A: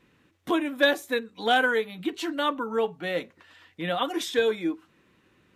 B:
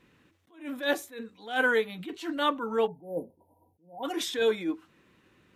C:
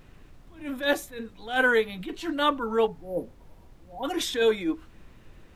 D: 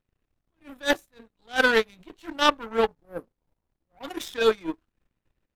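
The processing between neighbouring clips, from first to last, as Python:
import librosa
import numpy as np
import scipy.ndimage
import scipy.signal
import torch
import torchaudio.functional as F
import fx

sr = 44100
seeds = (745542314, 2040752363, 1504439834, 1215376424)

y1 = fx.spec_erase(x, sr, start_s=2.87, length_s=1.16, low_hz=990.0, high_hz=9400.0)
y1 = fx.attack_slew(y1, sr, db_per_s=150.0)
y2 = fx.dmg_noise_colour(y1, sr, seeds[0], colour='brown', level_db=-52.0)
y2 = y2 * 10.0 ** (3.0 / 20.0)
y3 = fx.power_curve(y2, sr, exponent=2.0)
y3 = y3 * 10.0 ** (8.0 / 20.0)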